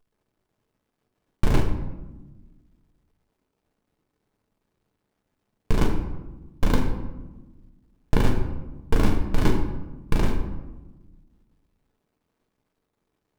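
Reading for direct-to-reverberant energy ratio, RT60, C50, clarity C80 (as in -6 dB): 3.0 dB, 1.1 s, 6.5 dB, 9.0 dB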